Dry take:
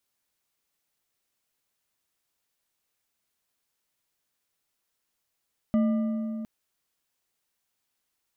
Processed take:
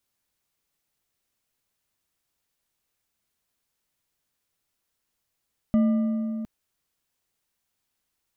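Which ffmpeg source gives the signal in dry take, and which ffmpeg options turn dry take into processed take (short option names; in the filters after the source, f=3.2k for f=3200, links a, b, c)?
-f lavfi -i "aevalsrc='0.112*pow(10,-3*t/3.24)*sin(2*PI*222*t)+0.0335*pow(10,-3*t/2.39)*sin(2*PI*612.1*t)+0.01*pow(10,-3*t/1.953)*sin(2*PI*1199.7*t)+0.00299*pow(10,-3*t/1.68)*sin(2*PI*1983.1*t)+0.000891*pow(10,-3*t/1.489)*sin(2*PI*2961.5*t)':d=0.71:s=44100"
-af "lowshelf=f=190:g=7"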